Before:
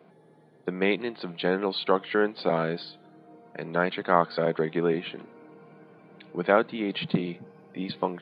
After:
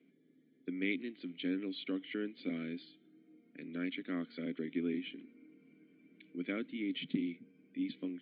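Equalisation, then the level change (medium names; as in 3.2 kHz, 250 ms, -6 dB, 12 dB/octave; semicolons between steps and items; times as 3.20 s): vowel filter i; +1.0 dB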